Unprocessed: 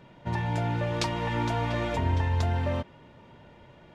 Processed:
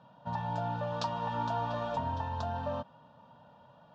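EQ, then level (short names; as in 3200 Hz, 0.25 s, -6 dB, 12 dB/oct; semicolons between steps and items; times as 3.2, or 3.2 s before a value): BPF 180–4900 Hz; air absorption 68 m; fixed phaser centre 890 Hz, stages 4; 0.0 dB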